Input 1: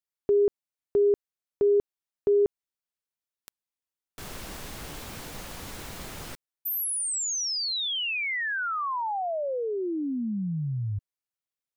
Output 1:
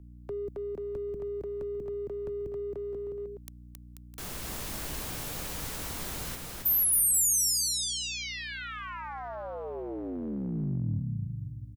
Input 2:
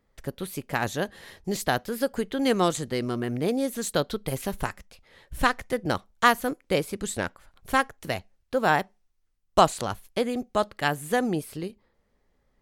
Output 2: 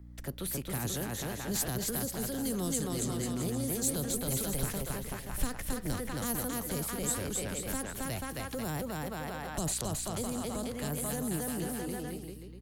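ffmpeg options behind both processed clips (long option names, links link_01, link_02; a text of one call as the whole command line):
ffmpeg -i in.wav -filter_complex "[0:a]aecho=1:1:270|486|658.8|797|907.6:0.631|0.398|0.251|0.158|0.1,acrossover=split=220|440|6100[link_01][link_02][link_03][link_04];[link_03]acompressor=threshold=-37dB:ratio=6:attack=12:release=23[link_05];[link_01][link_02][link_05][link_04]amix=inputs=4:normalize=0,aeval=exprs='val(0)+0.00501*(sin(2*PI*60*n/s)+sin(2*PI*2*60*n/s)/2+sin(2*PI*3*60*n/s)/3+sin(2*PI*4*60*n/s)/4+sin(2*PI*5*60*n/s)/5)':channel_layout=same,highshelf=frequency=7200:gain=7.5,acrossover=split=160|4400[link_06][link_07][link_08];[link_07]acompressor=threshold=-33dB:ratio=6:attack=0.34:release=23:knee=2.83:detection=peak[link_09];[link_06][link_09][link_08]amix=inputs=3:normalize=0,volume=-1.5dB" out.wav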